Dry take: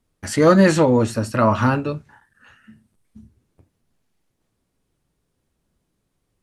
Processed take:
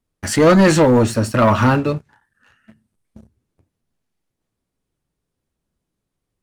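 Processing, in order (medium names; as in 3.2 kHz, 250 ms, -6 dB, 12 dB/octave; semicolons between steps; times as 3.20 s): waveshaping leveller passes 2; trim -2 dB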